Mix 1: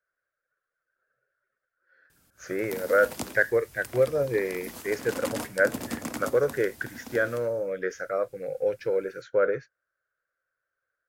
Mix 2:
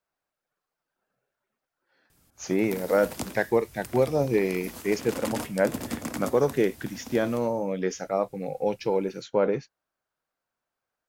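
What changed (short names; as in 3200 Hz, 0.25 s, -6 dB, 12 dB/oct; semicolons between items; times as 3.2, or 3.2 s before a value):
speech: remove EQ curve 120 Hz 0 dB, 210 Hz -15 dB, 540 Hz +3 dB, 870 Hz -17 dB, 1500 Hz +11 dB, 2700 Hz -9 dB; master: add low shelf 130 Hz +5 dB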